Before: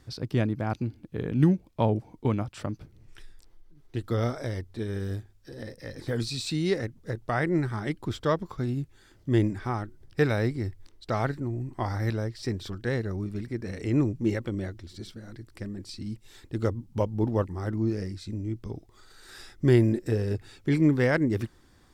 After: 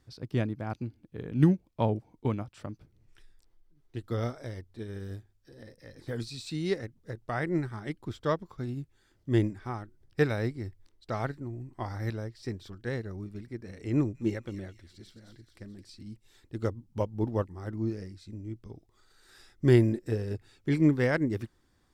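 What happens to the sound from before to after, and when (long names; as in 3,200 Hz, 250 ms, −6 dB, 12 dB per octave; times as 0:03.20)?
0:13.93–0:16.02: delay with a high-pass on its return 216 ms, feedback 56%, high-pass 2,700 Hz, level −5.5 dB
whole clip: expander for the loud parts 1.5 to 1, over −36 dBFS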